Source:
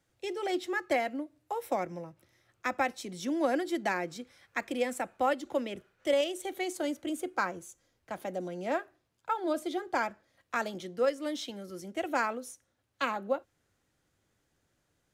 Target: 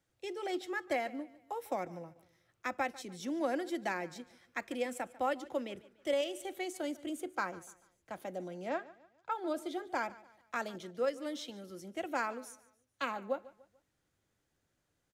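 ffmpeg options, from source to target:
-filter_complex "[0:a]asettb=1/sr,asplit=3[s0][s1][s2];[s0]atrim=end=8.694[s3];[s1]atrim=start=8.69:end=9.32,asetpts=PTS-STARTPTS,afade=t=in:d=0.004:c=qsin,afade=t=out:st=0.626:d=0.004:c=qsin,lowpass=f=6800:w=0.5412,lowpass=f=6800:w=1.3066[s4];[s2]atrim=start=9.316[s5];[s3][s4]acrossfade=d=0.004:c1=hsin:c2=qsin[s6];[s6][s5]acrossfade=d=0.004:c1=qsin:c2=hsin,aecho=1:1:146|292|438:0.106|0.0413|0.0161,volume=0.562"

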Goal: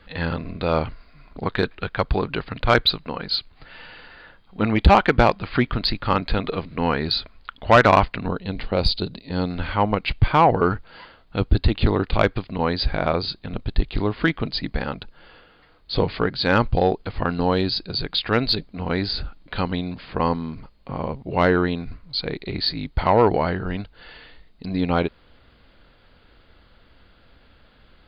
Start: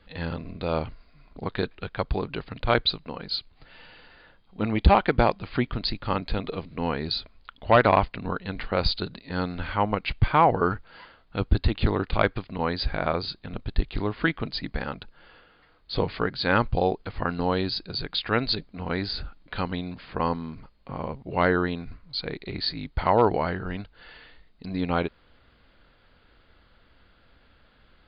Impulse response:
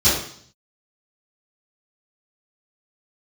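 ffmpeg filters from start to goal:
-af "asetnsamples=n=441:p=0,asendcmd='8.28 equalizer g -9;9.5 equalizer g -2.5',equalizer=f=1500:t=o:w=1.3:g=3.5,asoftclip=type=tanh:threshold=0.316,volume=1.88"

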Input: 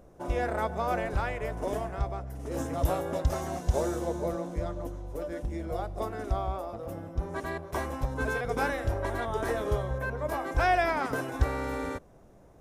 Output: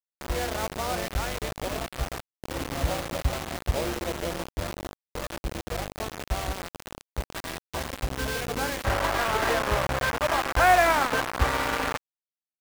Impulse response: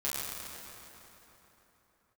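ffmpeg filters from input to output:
-af "lowpass=f=3500:w=0.5412,lowpass=f=3500:w=1.3066,bandreject=f=400:w=12,aeval=exprs='val(0)+0.00708*(sin(2*PI*50*n/s)+sin(2*PI*2*50*n/s)/2+sin(2*PI*3*50*n/s)/3+sin(2*PI*4*50*n/s)/4+sin(2*PI*5*50*n/s)/5)':c=same,acrusher=bits=4:mix=0:aa=0.000001,asetnsamples=n=441:p=0,asendcmd='8.85 equalizer g 8',equalizer=f=1200:w=0.54:g=-2"

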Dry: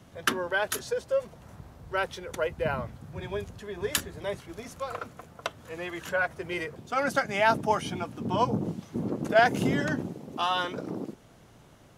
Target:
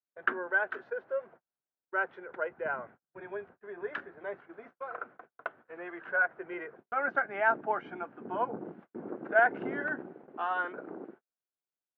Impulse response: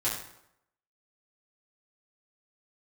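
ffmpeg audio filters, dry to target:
-af "highpass=310,equalizer=f=370:t=q:w=4:g=5,equalizer=f=740:t=q:w=4:g=4,equalizer=f=1500:t=q:w=4:g=10,lowpass=f=2100:w=0.5412,lowpass=f=2100:w=1.3066,agate=range=0.00708:threshold=0.00631:ratio=16:detection=peak,volume=0.422"

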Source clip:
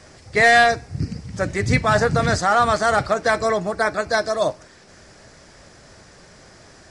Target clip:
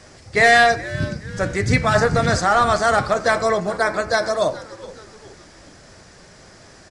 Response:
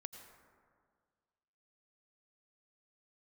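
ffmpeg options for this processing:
-filter_complex "[0:a]bandreject=f=71.62:t=h:w=4,bandreject=f=143.24:t=h:w=4,bandreject=f=214.86:t=h:w=4,bandreject=f=286.48:t=h:w=4,bandreject=f=358.1:t=h:w=4,bandreject=f=429.72:t=h:w=4,bandreject=f=501.34:t=h:w=4,bandreject=f=572.96:t=h:w=4,bandreject=f=644.58:t=h:w=4,bandreject=f=716.2:t=h:w=4,bandreject=f=787.82:t=h:w=4,bandreject=f=859.44:t=h:w=4,bandreject=f=931.06:t=h:w=4,bandreject=f=1002.68:t=h:w=4,bandreject=f=1074.3:t=h:w=4,bandreject=f=1145.92:t=h:w=4,bandreject=f=1217.54:t=h:w=4,bandreject=f=1289.16:t=h:w=4,bandreject=f=1360.78:t=h:w=4,bandreject=f=1432.4:t=h:w=4,bandreject=f=1504.02:t=h:w=4,bandreject=f=1575.64:t=h:w=4,bandreject=f=1647.26:t=h:w=4,bandreject=f=1718.88:t=h:w=4,bandreject=f=1790.5:t=h:w=4,bandreject=f=1862.12:t=h:w=4,bandreject=f=1933.74:t=h:w=4,bandreject=f=2005.36:t=h:w=4,bandreject=f=2076.98:t=h:w=4,bandreject=f=2148.6:t=h:w=4,bandreject=f=2220.22:t=h:w=4,bandreject=f=2291.84:t=h:w=4,bandreject=f=2363.46:t=h:w=4,bandreject=f=2435.08:t=h:w=4,bandreject=f=2506.7:t=h:w=4,asplit=4[s0][s1][s2][s3];[s1]adelay=421,afreqshift=-110,volume=0.133[s4];[s2]adelay=842,afreqshift=-220,volume=0.055[s5];[s3]adelay=1263,afreqshift=-330,volume=0.0224[s6];[s0][s4][s5][s6]amix=inputs=4:normalize=0,asplit=2[s7][s8];[1:a]atrim=start_sample=2205,atrim=end_sample=4410[s9];[s8][s9]afir=irnorm=-1:irlink=0,volume=1.19[s10];[s7][s10]amix=inputs=2:normalize=0,volume=0.708"

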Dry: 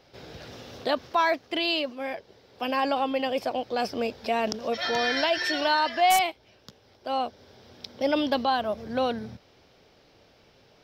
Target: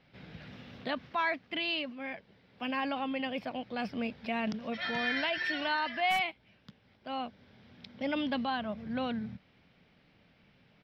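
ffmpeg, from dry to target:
-af "firequalizer=gain_entry='entry(100,0);entry(180,9);entry(370,-7);entry(2100,4);entry(6300,-16)':delay=0.05:min_phase=1,volume=0.531"

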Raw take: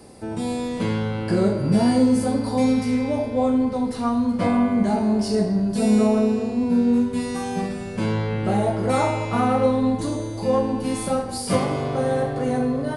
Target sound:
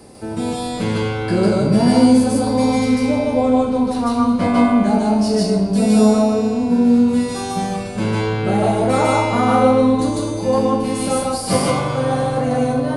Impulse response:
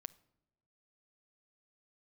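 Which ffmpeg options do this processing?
-filter_complex "[0:a]asplit=2[s0][s1];[s1]asuperstop=centerf=1800:order=4:qfactor=3.7[s2];[1:a]atrim=start_sample=2205,lowshelf=f=430:g=-7,adelay=150[s3];[s2][s3]afir=irnorm=-1:irlink=0,volume=2.24[s4];[s0][s4]amix=inputs=2:normalize=0,volume=1.41"

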